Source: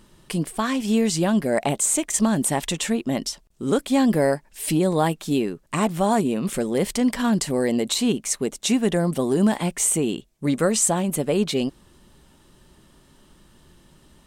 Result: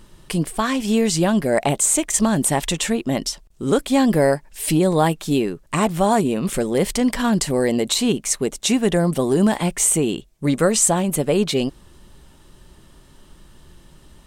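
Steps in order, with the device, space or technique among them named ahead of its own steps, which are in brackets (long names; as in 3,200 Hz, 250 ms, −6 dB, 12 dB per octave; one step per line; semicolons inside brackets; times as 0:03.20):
low shelf boost with a cut just above (low-shelf EQ 68 Hz +7.5 dB; parametric band 230 Hz −3 dB 0.61 octaves)
level +3.5 dB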